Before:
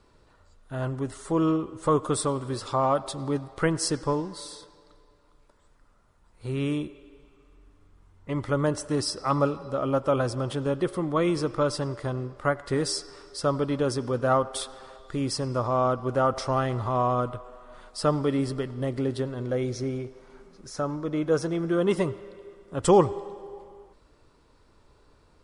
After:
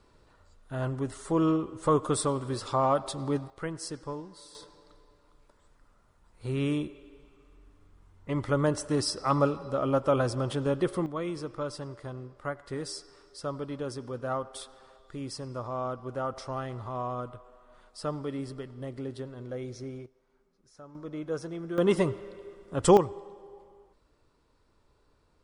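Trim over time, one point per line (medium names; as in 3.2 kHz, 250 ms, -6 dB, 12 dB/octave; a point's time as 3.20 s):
-1.5 dB
from 3.50 s -11 dB
from 4.55 s -1 dB
from 11.06 s -9.5 dB
from 20.06 s -20 dB
from 20.95 s -9.5 dB
from 21.78 s 0 dB
from 22.97 s -8 dB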